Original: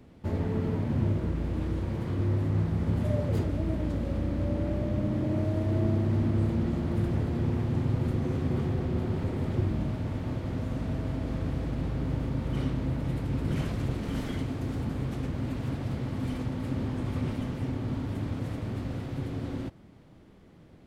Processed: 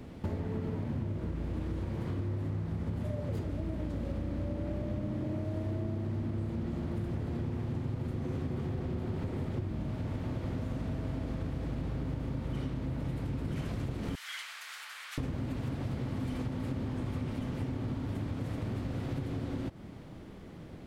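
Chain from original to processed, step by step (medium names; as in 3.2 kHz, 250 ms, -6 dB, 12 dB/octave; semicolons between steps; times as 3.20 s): 14.15–15.18 s: high-pass 1.4 kHz 24 dB/octave; compression 8:1, threshold -39 dBFS, peak gain reduction 17 dB; trim +7 dB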